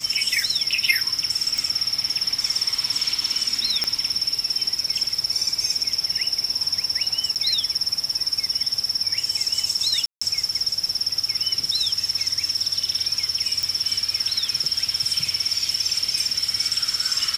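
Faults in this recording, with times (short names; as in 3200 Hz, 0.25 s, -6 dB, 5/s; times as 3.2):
1.58 pop
3.84 pop -7 dBFS
7.35–7.36 gap 8.2 ms
10.06–10.21 gap 0.155 s
13.63 pop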